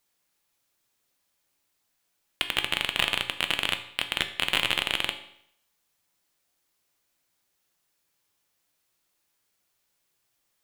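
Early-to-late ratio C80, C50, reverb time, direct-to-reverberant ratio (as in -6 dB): 14.5 dB, 11.5 dB, 0.70 s, 7.0 dB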